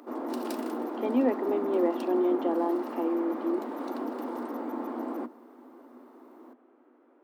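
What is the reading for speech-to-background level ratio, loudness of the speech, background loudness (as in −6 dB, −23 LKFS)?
5.5 dB, −29.0 LKFS, −34.5 LKFS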